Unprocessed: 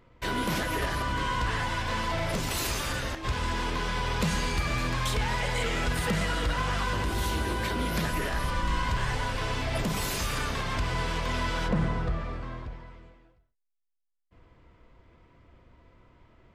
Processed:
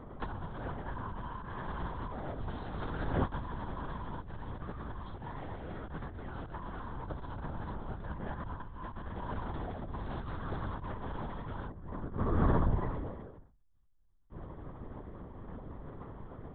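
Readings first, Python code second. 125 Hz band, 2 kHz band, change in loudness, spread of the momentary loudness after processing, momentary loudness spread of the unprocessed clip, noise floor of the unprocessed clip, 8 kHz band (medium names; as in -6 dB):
-6.5 dB, -17.0 dB, -10.5 dB, 14 LU, 3 LU, -73 dBFS, under -40 dB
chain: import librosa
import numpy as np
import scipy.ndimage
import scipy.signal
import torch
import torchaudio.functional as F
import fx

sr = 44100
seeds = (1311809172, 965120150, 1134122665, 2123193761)

y = fx.over_compress(x, sr, threshold_db=-36.0, ratio=-0.5)
y = np.convolve(y, np.full(18, 1.0 / 18))[:len(y)]
y = fx.lpc_vocoder(y, sr, seeds[0], excitation='whisper', order=8)
y = y * librosa.db_to_amplitude(2.5)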